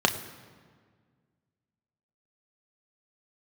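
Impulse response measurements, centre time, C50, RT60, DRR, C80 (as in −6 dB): 15 ms, 12.0 dB, 1.7 s, 4.5 dB, 13.0 dB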